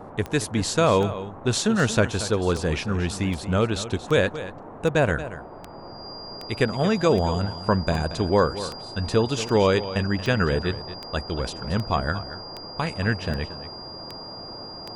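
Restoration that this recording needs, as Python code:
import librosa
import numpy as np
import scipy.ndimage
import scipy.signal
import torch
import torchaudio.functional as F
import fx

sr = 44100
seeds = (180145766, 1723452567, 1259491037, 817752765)

y = fx.fix_declick_ar(x, sr, threshold=10.0)
y = fx.notch(y, sr, hz=4800.0, q=30.0)
y = fx.noise_reduce(y, sr, print_start_s=5.43, print_end_s=5.93, reduce_db=29.0)
y = fx.fix_echo_inverse(y, sr, delay_ms=229, level_db=-13.5)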